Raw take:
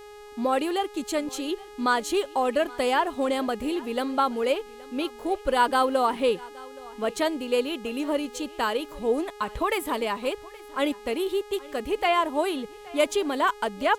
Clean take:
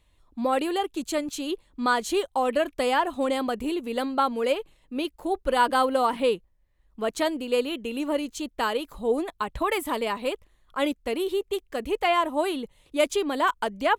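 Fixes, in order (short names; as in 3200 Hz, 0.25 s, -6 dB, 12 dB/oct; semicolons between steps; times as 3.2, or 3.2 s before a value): de-hum 416 Hz, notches 34; inverse comb 0.822 s -21.5 dB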